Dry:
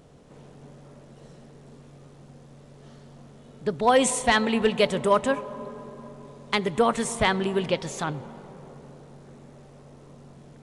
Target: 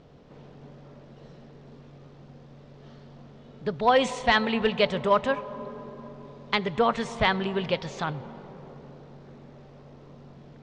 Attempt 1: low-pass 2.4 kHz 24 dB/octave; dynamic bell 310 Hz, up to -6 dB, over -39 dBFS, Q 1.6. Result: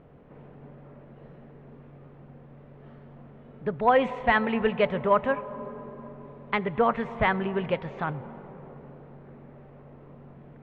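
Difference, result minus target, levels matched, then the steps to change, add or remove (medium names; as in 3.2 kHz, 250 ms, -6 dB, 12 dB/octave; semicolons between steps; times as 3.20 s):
4 kHz band -9.5 dB
change: low-pass 5.1 kHz 24 dB/octave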